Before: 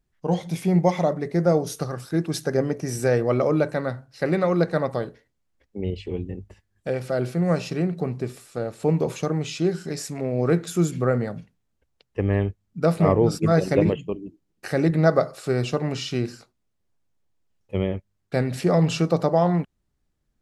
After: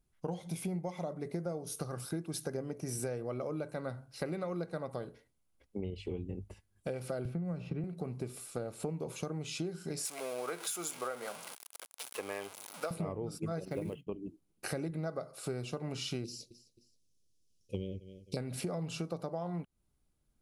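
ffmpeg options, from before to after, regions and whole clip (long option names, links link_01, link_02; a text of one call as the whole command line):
ffmpeg -i in.wav -filter_complex "[0:a]asettb=1/sr,asplit=3[link_01][link_02][link_03];[link_01]atrim=end=7.254[link_04];[link_02]atrim=start=7.25:end=7.84,asetpts=PTS-STARTPTS,afade=type=in:duration=0.004:curve=qsin,afade=type=out:start_time=0.586:duration=0.004:curve=qsin,bass=frequency=250:gain=12,treble=frequency=4000:gain=-12,acrossover=split=230|3500[link_05][link_06][link_07];[link_05]acompressor=threshold=-21dB:ratio=4[link_08];[link_06]acompressor=threshold=-24dB:ratio=4[link_09];[link_07]acompressor=threshold=-58dB:ratio=4[link_10];[link_08][link_09][link_10]amix=inputs=3:normalize=0[link_11];[link_03]atrim=start=7.836[link_12];[link_04][link_11]acrossfade=duration=0.004:curve1=hsin:curve2=qsin[link_13];[link_13][link_12]acrossfade=duration=0.004:curve1=qsin:curve2=hsin,asettb=1/sr,asplit=3[link_14][link_15][link_16];[link_14]atrim=end=10.054[link_17];[link_15]atrim=start=10.05:end=12.91,asetpts=PTS-STARTPTS,afade=type=in:duration=0.004:curve=qsin,afade=type=out:start_time=2.856:duration=0.004:curve=qsin,aeval=exprs='val(0)+0.5*0.0266*sgn(val(0))':channel_layout=same,highpass=750[link_18];[link_16]atrim=start=12.906[link_19];[link_17][link_18]acrossfade=duration=0.004:curve1=hsin:curve2=qsin[link_20];[link_20][link_19]acrossfade=duration=0.004:curve1=qsin:curve2=hsin,asettb=1/sr,asplit=3[link_21][link_22][link_23];[link_21]atrim=end=13.654[link_24];[link_22]atrim=start=13.65:end=14.07,asetpts=PTS-STARTPTS,afade=type=in:duration=0.004:curve=qsin,afade=type=out:start_time=0.416:duration=0.004:curve=qsin,agate=range=-33dB:threshold=-31dB:ratio=3:release=100:detection=peak,lowpass=frequency=4600:width=0.5412,lowpass=frequency=4600:width=1.3066,acrusher=bits=8:mode=log:mix=0:aa=0.000001[link_25];[link_23]atrim=start=14.066[link_26];[link_24][link_25]acrossfade=duration=0.004:curve1=hsin:curve2=qsin[link_27];[link_27][link_26]acrossfade=duration=0.004:curve1=qsin:curve2=hsin,asettb=1/sr,asplit=3[link_28][link_29][link_30];[link_28]atrim=end=16.244[link_31];[link_29]atrim=start=16.24:end=18.37,asetpts=PTS-STARTPTS,afade=type=in:duration=0.004:curve=qsin,afade=type=out:start_time=2.126:duration=0.004:curve=qsin,asuperstop=centerf=1200:order=8:qfactor=0.55,equalizer=frequency=5600:width=1.6:gain=12.5,aecho=1:1:265|530:0.0708|0.0262,atrim=end_sample=93933[link_32];[link_30]atrim=start=18.366[link_33];[link_31][link_32]acrossfade=duration=0.004:curve1=hsin:curve2=qsin[link_34];[link_34][link_33]acrossfade=duration=0.004:curve1=qsin:curve2=hsin,equalizer=frequency=10000:width_type=o:width=0.34:gain=11.5,bandreject=frequency=1800:width=6.2,acompressor=threshold=-31dB:ratio=12,volume=-3dB" out.wav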